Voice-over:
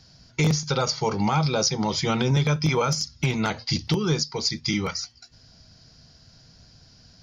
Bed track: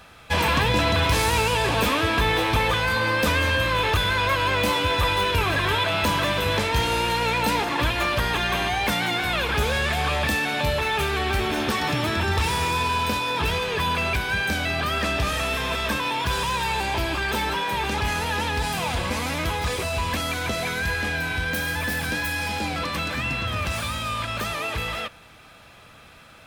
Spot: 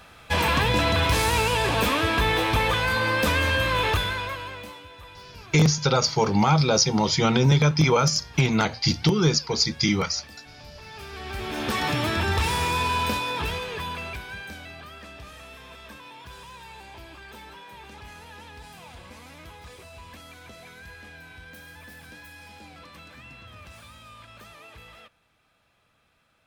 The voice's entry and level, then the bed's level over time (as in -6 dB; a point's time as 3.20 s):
5.15 s, +3.0 dB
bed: 3.92 s -1 dB
4.90 s -23.5 dB
10.70 s -23.5 dB
11.78 s -1 dB
13.08 s -1 dB
14.99 s -19 dB